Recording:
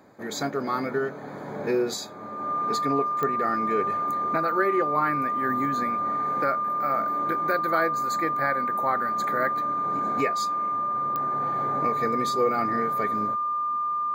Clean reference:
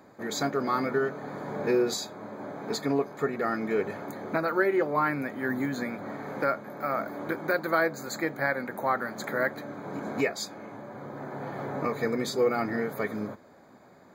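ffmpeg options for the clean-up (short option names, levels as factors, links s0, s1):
-af "adeclick=t=4,bandreject=f=1200:w=30"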